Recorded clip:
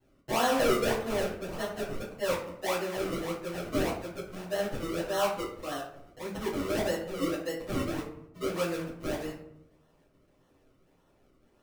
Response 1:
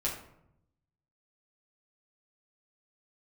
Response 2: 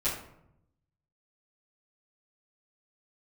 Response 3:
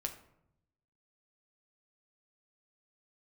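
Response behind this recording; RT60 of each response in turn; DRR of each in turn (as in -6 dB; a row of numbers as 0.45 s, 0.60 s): 2; 0.75 s, 0.75 s, 0.75 s; -5.5 dB, -12.5 dB, 4.0 dB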